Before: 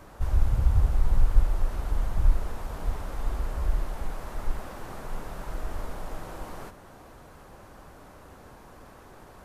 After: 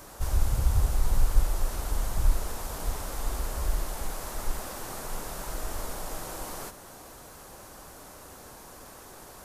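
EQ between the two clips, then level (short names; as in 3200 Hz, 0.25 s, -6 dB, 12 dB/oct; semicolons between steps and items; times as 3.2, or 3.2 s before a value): tone controls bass -4 dB, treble +13 dB; +1.5 dB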